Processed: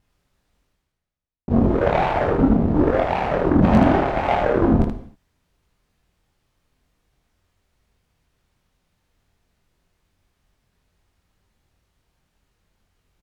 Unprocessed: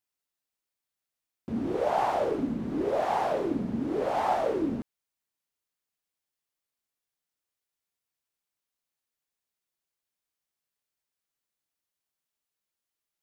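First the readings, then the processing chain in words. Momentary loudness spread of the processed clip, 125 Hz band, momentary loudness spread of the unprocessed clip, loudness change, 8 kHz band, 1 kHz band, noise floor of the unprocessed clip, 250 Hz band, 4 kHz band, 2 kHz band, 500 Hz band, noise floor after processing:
6 LU, +19.5 dB, 8 LU, +10.0 dB, n/a, +7.0 dB, under -85 dBFS, +12.5 dB, +7.5 dB, +12.5 dB, +8.5 dB, -75 dBFS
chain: spectral repair 3.65–4.09, 420–8700 Hz after; vibrato 7.4 Hz 78 cents; low shelf 80 Hz +6.5 dB; reverse; upward compressor, threshold -30 dBFS; reverse; RIAA curve playback; added harmonics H 7 -18 dB, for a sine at -10 dBFS; on a send: early reflections 23 ms -3.5 dB, 78 ms -4 dB; on the sum: non-linear reverb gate 0.27 s falling, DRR 9.5 dB; gain +4.5 dB

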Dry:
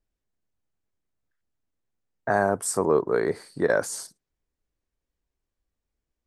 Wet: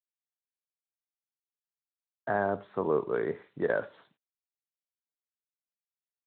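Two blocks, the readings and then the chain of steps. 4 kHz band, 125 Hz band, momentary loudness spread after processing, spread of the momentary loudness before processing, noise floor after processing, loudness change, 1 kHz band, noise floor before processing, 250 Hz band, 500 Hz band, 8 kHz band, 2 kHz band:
under -15 dB, -6.5 dB, 8 LU, 13 LU, under -85 dBFS, -6.5 dB, -6.5 dB, -85 dBFS, -6.5 dB, -6.0 dB, under -40 dB, -6.5 dB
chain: Schroeder reverb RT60 0.3 s, combs from 27 ms, DRR 15 dB; requantised 10-bit, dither none; gain -6.5 dB; Speex 24 kbps 8000 Hz

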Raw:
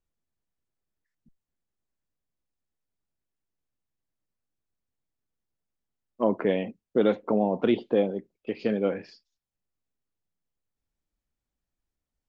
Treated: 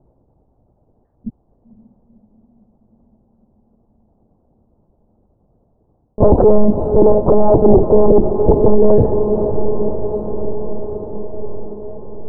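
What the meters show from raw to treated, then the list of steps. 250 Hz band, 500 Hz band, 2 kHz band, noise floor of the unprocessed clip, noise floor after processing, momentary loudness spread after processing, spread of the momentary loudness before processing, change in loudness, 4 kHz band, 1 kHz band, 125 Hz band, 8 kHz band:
+12.5 dB, +16.0 dB, under -10 dB, under -85 dBFS, -60 dBFS, 20 LU, 7 LU, +12.5 dB, under -30 dB, +14.5 dB, +20.5 dB, n/a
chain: vibrato 5.2 Hz 37 cents; HPF 75 Hz 12 dB/oct; monotone LPC vocoder at 8 kHz 210 Hz; reverse; compressor 12:1, threshold -29 dBFS, peak gain reduction 12.5 dB; reverse; sine folder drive 8 dB, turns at -20.5 dBFS; steep low-pass 850 Hz 36 dB/oct; on a send: diffused feedback echo 0.515 s, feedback 71%, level -15 dB; on the sum: maximiser +26.5 dB; gain -1 dB

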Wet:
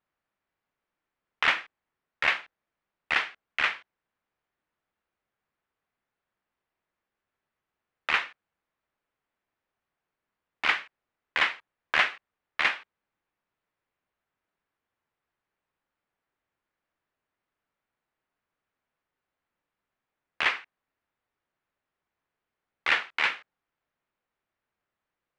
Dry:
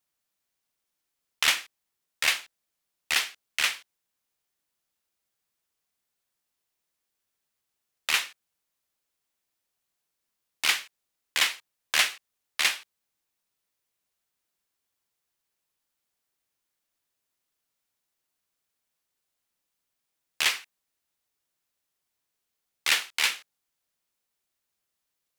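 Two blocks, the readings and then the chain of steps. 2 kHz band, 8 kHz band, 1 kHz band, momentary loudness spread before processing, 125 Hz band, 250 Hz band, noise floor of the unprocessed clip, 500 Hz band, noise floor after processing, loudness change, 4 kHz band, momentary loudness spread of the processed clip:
+1.5 dB, -20.5 dB, +5.0 dB, 13 LU, n/a, +4.0 dB, -83 dBFS, +4.5 dB, under -85 dBFS, -1.0 dB, -6.0 dB, 13 LU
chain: Chebyshev low-pass 1700 Hz, order 2; gain +5 dB

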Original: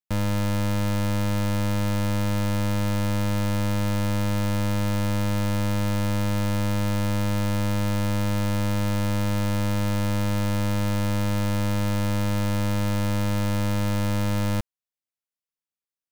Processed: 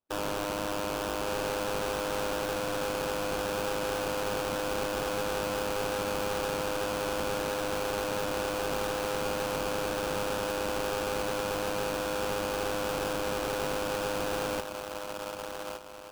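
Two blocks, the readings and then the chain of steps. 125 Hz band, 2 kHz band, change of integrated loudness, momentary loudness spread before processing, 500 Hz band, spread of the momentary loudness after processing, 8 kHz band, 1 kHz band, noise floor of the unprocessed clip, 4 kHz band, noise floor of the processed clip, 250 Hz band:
-20.5 dB, -1.0 dB, -6.5 dB, 0 LU, +2.0 dB, 1 LU, -1.0 dB, 0.0 dB, under -85 dBFS, -1.0 dB, -39 dBFS, -12.0 dB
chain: brick-wall FIR high-pass 300 Hz; band-limited delay 1.163 s, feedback 38%, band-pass 850 Hz, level -4.5 dB; sample-rate reducer 2000 Hz, jitter 20%

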